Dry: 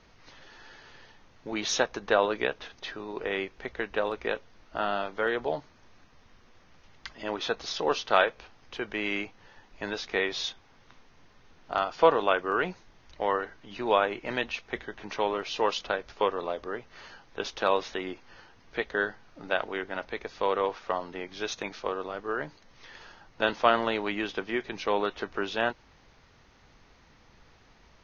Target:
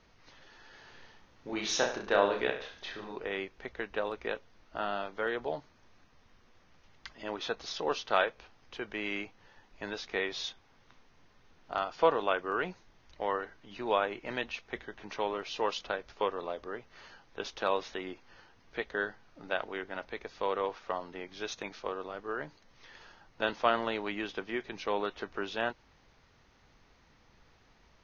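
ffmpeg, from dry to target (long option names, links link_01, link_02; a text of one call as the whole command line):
ffmpeg -i in.wav -filter_complex "[0:a]asettb=1/sr,asplit=3[link_01][link_02][link_03];[link_01]atrim=end=0.704[link_04];[link_02]atrim=start=0.7:end=3.16,asetpts=PTS-STARTPTS,afade=type=in:duration=0.004:curve=qsin,afade=type=out:start_time=2.456:duration=0.004:curve=qsin,aecho=1:1:30|63|99.3|139.2|183.2:0.631|0.398|0.251|0.158|0.1,atrim=end_sample=108486[link_05];[link_03]atrim=start=3.156[link_06];[link_04][link_05]acrossfade=duration=0.004:curve1=hsin:curve2=qsin[link_07];[link_07][link_06]acrossfade=duration=0.004:curve1=qsin:curve2=hsin,volume=-5dB" out.wav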